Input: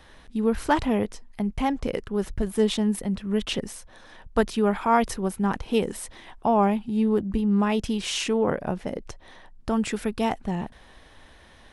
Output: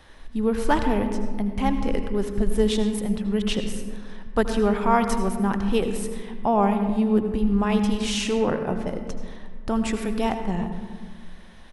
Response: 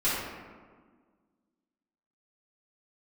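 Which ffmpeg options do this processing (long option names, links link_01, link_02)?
-filter_complex "[0:a]asplit=2[link_01][link_02];[link_02]aecho=1:1:4.6:0.34[link_03];[1:a]atrim=start_sample=2205,lowshelf=frequency=91:gain=12,adelay=74[link_04];[link_03][link_04]afir=irnorm=-1:irlink=0,volume=-19.5dB[link_05];[link_01][link_05]amix=inputs=2:normalize=0"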